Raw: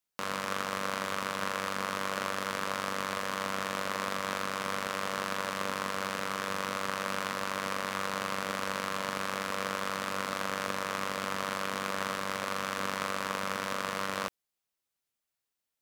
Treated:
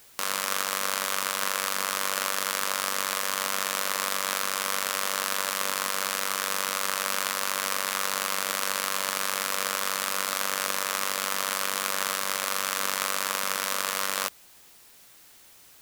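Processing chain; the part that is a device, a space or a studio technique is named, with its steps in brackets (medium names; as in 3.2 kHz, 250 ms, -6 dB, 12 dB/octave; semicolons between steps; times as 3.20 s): turntable without a phono preamp (RIAA curve recording; white noise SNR 24 dB); trim +2.5 dB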